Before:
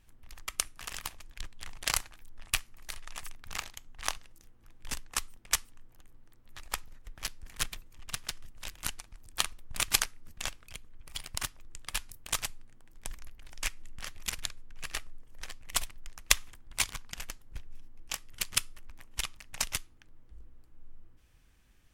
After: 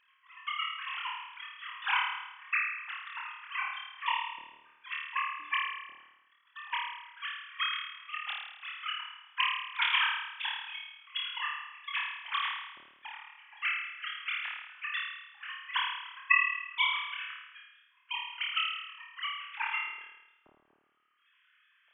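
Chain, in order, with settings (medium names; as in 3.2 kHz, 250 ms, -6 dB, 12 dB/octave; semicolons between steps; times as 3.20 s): formants replaced by sine waves; flutter echo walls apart 4.6 m, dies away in 0.95 s; trim -3.5 dB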